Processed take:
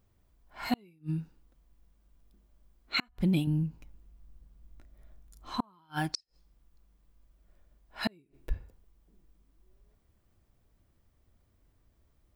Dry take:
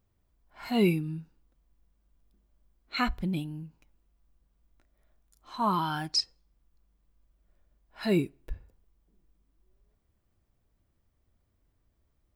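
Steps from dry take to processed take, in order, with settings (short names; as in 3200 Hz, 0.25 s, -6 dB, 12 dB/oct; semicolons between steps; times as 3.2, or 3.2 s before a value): 3.47–5.61 low shelf 280 Hz +9.5 dB; flipped gate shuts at -21 dBFS, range -39 dB; gain +4.5 dB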